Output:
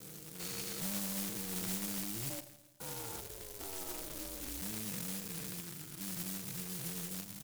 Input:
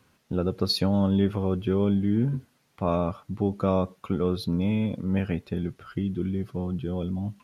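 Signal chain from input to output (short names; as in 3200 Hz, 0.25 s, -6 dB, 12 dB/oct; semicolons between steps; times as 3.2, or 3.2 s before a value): stepped spectrum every 0.4 s; gate with hold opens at -39 dBFS; pre-emphasis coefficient 0.8; notches 50/100 Hz; comb 6.3 ms, depth 77%; soft clip -37.5 dBFS, distortion -12 dB; 2.29–4.61 ring modulator 460 Hz -> 110 Hz; reverb RT60 1.2 s, pre-delay 47 ms, DRR 11 dB; careless resampling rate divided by 4×, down filtered, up zero stuff; noise-modulated delay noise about 1900 Hz, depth 0.036 ms; gain -2.5 dB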